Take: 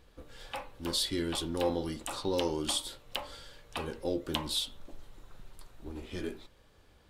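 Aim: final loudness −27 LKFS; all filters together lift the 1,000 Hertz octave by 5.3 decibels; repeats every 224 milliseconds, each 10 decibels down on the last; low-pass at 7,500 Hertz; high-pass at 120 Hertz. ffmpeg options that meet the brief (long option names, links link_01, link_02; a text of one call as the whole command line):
ffmpeg -i in.wav -af "highpass=120,lowpass=7500,equalizer=frequency=1000:width_type=o:gain=6.5,aecho=1:1:224|448|672|896:0.316|0.101|0.0324|0.0104,volume=6.5dB" out.wav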